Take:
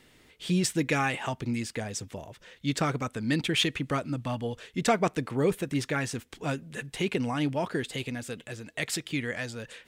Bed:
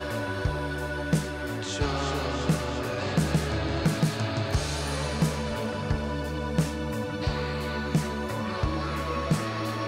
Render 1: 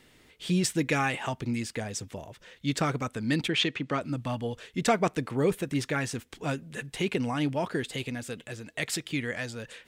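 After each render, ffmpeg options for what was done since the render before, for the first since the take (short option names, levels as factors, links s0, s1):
-filter_complex "[0:a]asettb=1/sr,asplit=3[s0][s1][s2];[s0]atrim=end=3.484[s3];[s1]atrim=start=3.48:end=4.01,asetpts=PTS-STARTPTS,afade=t=in:d=0.004:c=qsin,afade=t=out:st=0.526:d=0.004:c=qsin,highpass=150,lowpass=5200[s4];[s2]atrim=start=4.006[s5];[s3][s4]acrossfade=d=0.004:c1=hsin:c2=qsin[s6];[s6][s5]acrossfade=d=0.004:c1=qsin:c2=hsin"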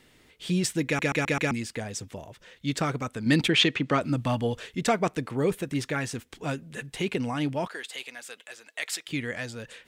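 -filter_complex "[0:a]asettb=1/sr,asplit=3[s0][s1][s2];[s0]atrim=end=3.264[s3];[s1]atrim=start=3.26:end=4.75,asetpts=PTS-STARTPTS,afade=t=in:d=0.004:c=qsin,afade=t=out:st=1.486:d=0.004:c=qsin,acontrast=33[s4];[s2]atrim=start=4.746[s5];[s3][s4]acrossfade=d=0.004:c1=hsin:c2=qsin[s6];[s6][s5]acrossfade=d=0.004:c1=qsin:c2=hsin,asettb=1/sr,asplit=3[s7][s8][s9];[s7]atrim=end=7.674[s10];[s8]atrim=start=7.67:end=9.08,asetpts=PTS-STARTPTS,afade=t=in:d=0.004:c=qsin,afade=t=out:st=1.406:d=0.004:c=qsin,highpass=770[s11];[s9]atrim=start=9.076[s12];[s10][s11]acrossfade=d=0.004:c1=hsin:c2=qsin[s13];[s13][s12]acrossfade=d=0.004:c1=qsin:c2=hsin,asplit=6[s14][s15][s16][s17][s18][s19];[s14]atrim=end=0.992[s20];[s15]atrim=start=0.858:end=0.992[s21];[s16]atrim=start=0.858:end=0.992[s22];[s17]atrim=start=0.858:end=0.992[s23];[s18]atrim=start=0.858:end=0.992[s24];[s19]atrim=start=1.508[s25];[s20][s21]acrossfade=d=0.004:c1=hsin:c2=hsin[s26];[s26][s22]acrossfade=d=0.004:c1=hsin:c2=hsin[s27];[s27][s23]acrossfade=d=0.004:c1=hsin:c2=hsin[s28];[s28][s24]acrossfade=d=0.004:c1=hsin:c2=hsin[s29];[s29][s25]acrossfade=d=0.004:c1=hsin:c2=hsin"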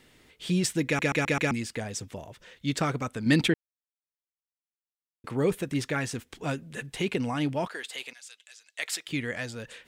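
-filter_complex "[0:a]asettb=1/sr,asplit=3[s0][s1][s2];[s0]atrim=end=8.134[s3];[s1]atrim=start=8.13:end=8.79,asetpts=PTS-STARTPTS,afade=t=in:d=0.004:c=qsin,afade=t=out:st=0.656:d=0.004:c=qsin,bandpass=f=5700:t=q:w=1.1[s4];[s2]atrim=start=8.786[s5];[s3][s4]acrossfade=d=0.004:c1=hsin:c2=qsin[s6];[s6][s5]acrossfade=d=0.004:c1=qsin:c2=hsin,asplit=3[s7][s8][s9];[s7]atrim=end=3.54,asetpts=PTS-STARTPTS,afade=t=out:st=3.536:d=0.004:c=hsin[s10];[s8]atrim=start=3.54:end=5.24,asetpts=PTS-STARTPTS,volume=0[s11];[s9]atrim=start=5.24,asetpts=PTS-STARTPTS,afade=t=in:d=0.004:c=hsin[s12];[s10][s11][s12]concat=n=3:v=0:a=1"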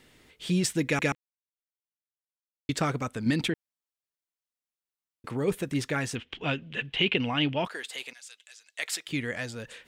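-filter_complex "[0:a]asettb=1/sr,asplit=3[s0][s1][s2];[s0]atrim=end=3.304[s3];[s1]atrim=start=3.3:end=5.48,asetpts=PTS-STARTPTS,afade=t=in:d=0.004:c=qsin,afade=t=out:st=2.176:d=0.004:c=qsin,acompressor=threshold=0.0447:ratio=2:attack=3.2:release=140:knee=1:detection=peak[s4];[s2]atrim=start=5.476[s5];[s3][s4]acrossfade=d=0.004:c1=hsin:c2=qsin[s6];[s6][s5]acrossfade=d=0.004:c1=qsin:c2=hsin,asettb=1/sr,asplit=3[s7][s8][s9];[s7]atrim=end=6.154[s10];[s8]atrim=start=6.15:end=7.65,asetpts=PTS-STARTPTS,afade=t=in:d=0.004:c=qsin,afade=t=out:st=1.496:d=0.004:c=qsin,lowpass=f=3000:t=q:w=4.6[s11];[s9]atrim=start=7.646[s12];[s10][s11]acrossfade=d=0.004:c1=hsin:c2=qsin[s13];[s13][s12]acrossfade=d=0.004:c1=qsin:c2=hsin,asplit=3[s14][s15][s16];[s14]atrim=end=1.15,asetpts=PTS-STARTPTS,afade=t=out:st=1.146:d=0.004:c=hsin[s17];[s15]atrim=start=1.15:end=2.69,asetpts=PTS-STARTPTS,volume=0[s18];[s16]atrim=start=2.69,asetpts=PTS-STARTPTS,afade=t=in:d=0.004:c=hsin[s19];[s17][s18][s19]concat=n=3:v=0:a=1"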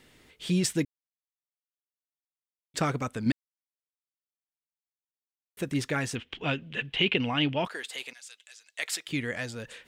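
-filter_complex "[0:a]asplit=5[s0][s1][s2][s3][s4];[s0]atrim=end=0.85,asetpts=PTS-STARTPTS,afade=t=out:st=0.846:d=0.004:c=hsin[s5];[s1]atrim=start=0.85:end=2.74,asetpts=PTS-STARTPTS,volume=0[s6];[s2]atrim=start=2.74:end=3.32,asetpts=PTS-STARTPTS,afade=t=in:d=0.004:c=hsin,afade=t=out:st=0.576:d=0.004:c=hsin[s7];[s3]atrim=start=3.32:end=5.57,asetpts=PTS-STARTPTS,volume=0[s8];[s4]atrim=start=5.57,asetpts=PTS-STARTPTS,afade=t=in:d=0.004:c=hsin[s9];[s5][s6][s7][s8][s9]concat=n=5:v=0:a=1"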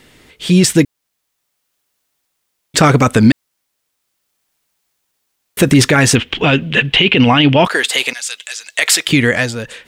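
-af "dynaudnorm=f=180:g=9:m=6.31,alimiter=level_in=3.98:limit=0.891:release=50:level=0:latency=1"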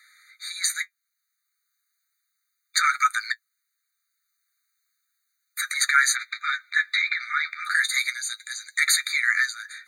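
-af "flanger=delay=7.8:depth=4.7:regen=45:speed=0.34:shape=sinusoidal,afftfilt=real='re*eq(mod(floor(b*sr/1024/1200),2),1)':imag='im*eq(mod(floor(b*sr/1024/1200),2),1)':win_size=1024:overlap=0.75"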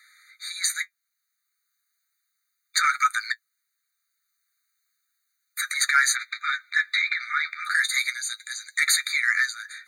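-af "asoftclip=type=tanh:threshold=0.447"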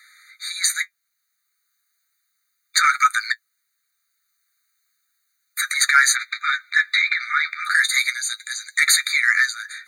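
-af "volume=1.78"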